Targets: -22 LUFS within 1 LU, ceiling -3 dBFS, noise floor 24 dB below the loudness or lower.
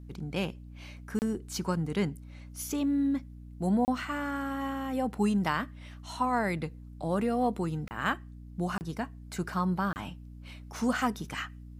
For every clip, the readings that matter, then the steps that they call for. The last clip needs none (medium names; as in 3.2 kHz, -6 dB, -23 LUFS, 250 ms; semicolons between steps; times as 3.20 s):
dropouts 5; longest dropout 29 ms; hum 60 Hz; highest harmonic 300 Hz; hum level -44 dBFS; loudness -32.0 LUFS; peak level -15.0 dBFS; loudness target -22.0 LUFS
-> interpolate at 1.19/3.85/7.88/8.78/9.93 s, 29 ms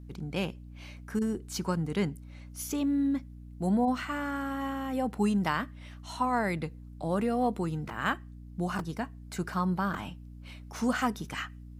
dropouts 0; hum 60 Hz; highest harmonic 300 Hz; hum level -44 dBFS
-> hum notches 60/120/180/240/300 Hz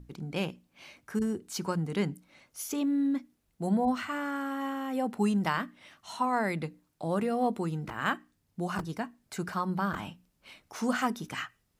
hum not found; loudness -32.0 LUFS; peak level -14.5 dBFS; loudness target -22.0 LUFS
-> trim +10 dB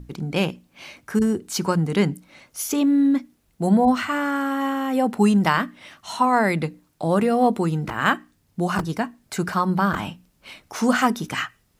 loudness -22.0 LUFS; peak level -4.5 dBFS; noise floor -65 dBFS